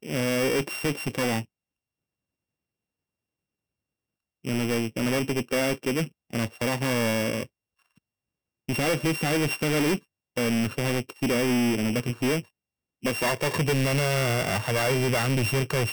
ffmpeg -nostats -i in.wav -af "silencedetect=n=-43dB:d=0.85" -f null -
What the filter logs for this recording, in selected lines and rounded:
silence_start: 1.44
silence_end: 4.45 | silence_duration: 3.01
silence_start: 7.46
silence_end: 8.69 | silence_duration: 1.22